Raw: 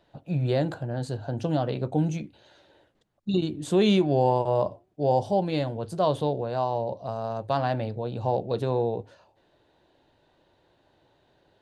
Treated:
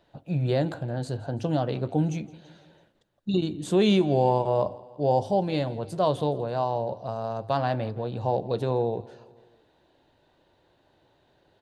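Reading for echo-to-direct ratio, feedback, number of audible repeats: -19.5 dB, 57%, 3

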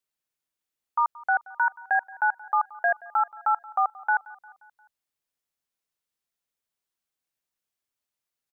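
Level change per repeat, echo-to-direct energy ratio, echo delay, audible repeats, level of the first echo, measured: -5.0 dB, -20.0 dB, 176 ms, 3, -21.5 dB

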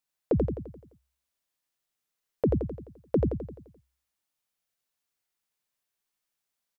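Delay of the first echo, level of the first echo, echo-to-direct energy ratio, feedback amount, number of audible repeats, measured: 86 ms, -3.0 dB, -1.5 dB, 51%, 6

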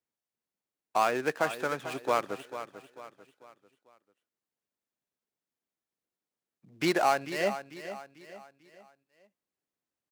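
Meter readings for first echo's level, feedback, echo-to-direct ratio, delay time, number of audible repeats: -12.0 dB, 41%, -11.0 dB, 444 ms, 3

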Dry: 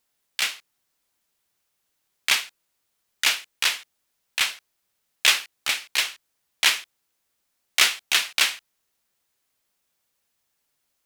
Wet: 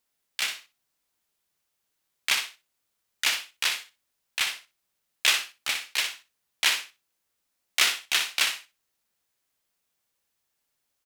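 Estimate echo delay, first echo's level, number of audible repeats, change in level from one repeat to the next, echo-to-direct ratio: 61 ms, -8.0 dB, 2, -15.5 dB, -8.0 dB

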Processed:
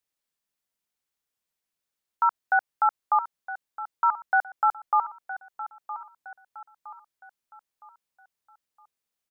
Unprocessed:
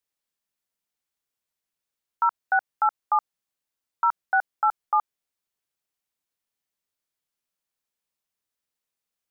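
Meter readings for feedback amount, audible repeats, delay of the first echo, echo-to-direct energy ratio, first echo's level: 41%, 3, 964 ms, -12.5 dB, -13.5 dB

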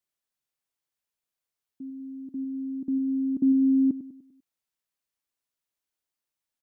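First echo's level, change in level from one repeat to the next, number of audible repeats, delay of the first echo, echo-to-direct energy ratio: -13.0 dB, -6.5 dB, 4, 99 ms, -12.0 dB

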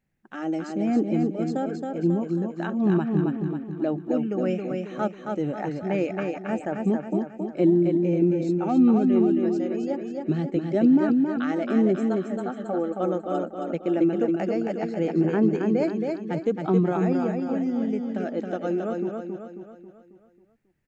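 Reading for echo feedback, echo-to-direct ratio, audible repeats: 48%, -3.0 dB, 5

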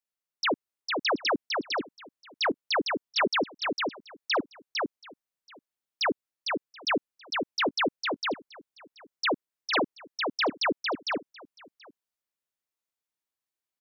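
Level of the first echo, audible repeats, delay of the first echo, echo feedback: -3.5 dB, 3, 454 ms, no regular repeats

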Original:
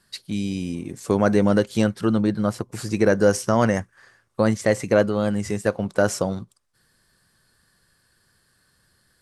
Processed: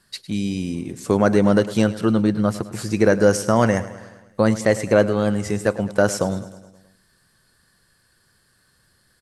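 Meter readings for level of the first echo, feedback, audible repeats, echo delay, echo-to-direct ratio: -16.0 dB, 58%, 5, 105 ms, -14.0 dB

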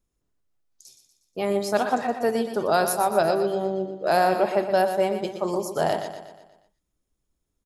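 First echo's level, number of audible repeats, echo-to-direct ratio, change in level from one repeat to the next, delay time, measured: -9.0 dB, 5, -8.0 dB, -6.0 dB, 120 ms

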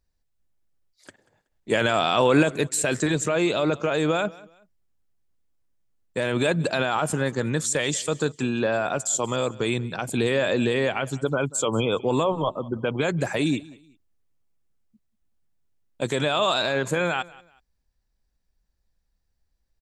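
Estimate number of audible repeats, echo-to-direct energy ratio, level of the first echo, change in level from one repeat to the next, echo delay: 2, -21.0 dB, -21.5 dB, -11.0 dB, 187 ms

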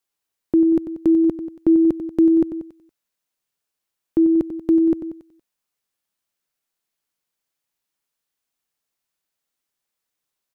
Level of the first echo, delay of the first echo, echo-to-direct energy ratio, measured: -11.0 dB, 93 ms, -9.5 dB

